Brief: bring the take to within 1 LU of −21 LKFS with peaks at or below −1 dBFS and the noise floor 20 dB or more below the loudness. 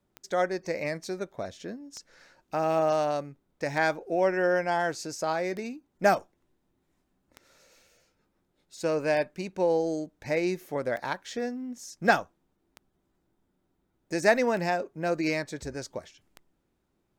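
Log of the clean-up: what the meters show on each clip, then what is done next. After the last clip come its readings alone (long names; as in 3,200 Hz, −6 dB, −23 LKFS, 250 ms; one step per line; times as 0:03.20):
number of clicks 10; integrated loudness −29.0 LKFS; sample peak −7.5 dBFS; target loudness −21.0 LKFS
→ click removal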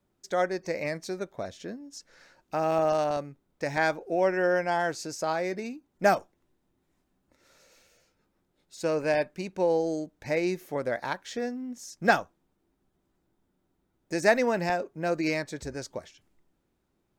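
number of clicks 0; integrated loudness −29.0 LKFS; sample peak −7.5 dBFS; target loudness −21.0 LKFS
→ level +8 dB
brickwall limiter −1 dBFS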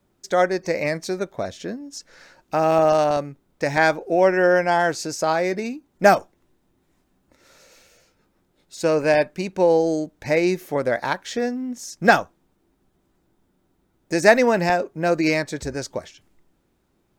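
integrated loudness −21.0 LKFS; sample peak −1.0 dBFS; background noise floor −68 dBFS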